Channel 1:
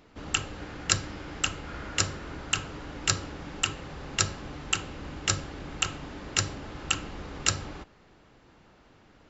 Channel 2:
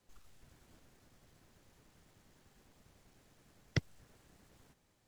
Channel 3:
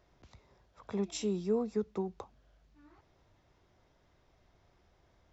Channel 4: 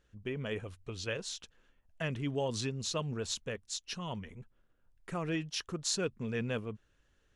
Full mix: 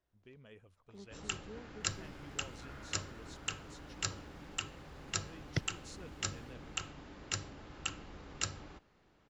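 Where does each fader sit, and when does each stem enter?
−11.0, −1.0, −19.0, −19.5 decibels; 0.95, 1.80, 0.00, 0.00 seconds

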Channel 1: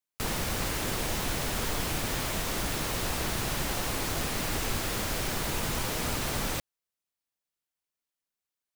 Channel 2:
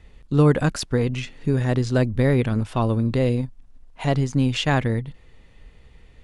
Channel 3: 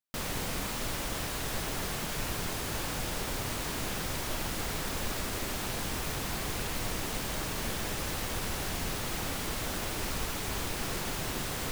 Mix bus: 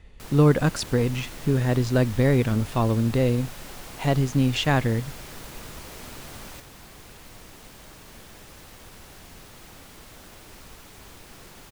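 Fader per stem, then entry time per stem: −11.0, −1.0, −12.0 decibels; 0.00, 0.00, 0.50 seconds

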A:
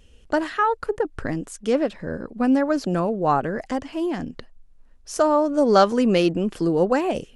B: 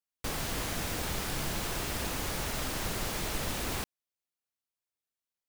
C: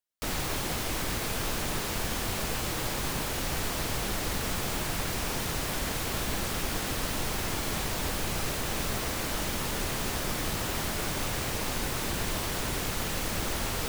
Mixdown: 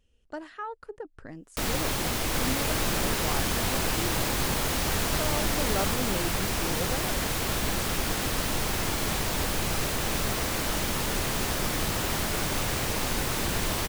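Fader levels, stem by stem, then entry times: −16.0, +1.0, +3.0 decibels; 0.00, 2.10, 1.35 seconds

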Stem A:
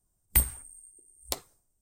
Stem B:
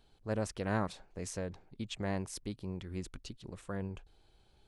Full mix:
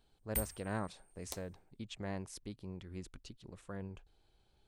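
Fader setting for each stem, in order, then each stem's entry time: −13.5, −5.5 decibels; 0.00, 0.00 seconds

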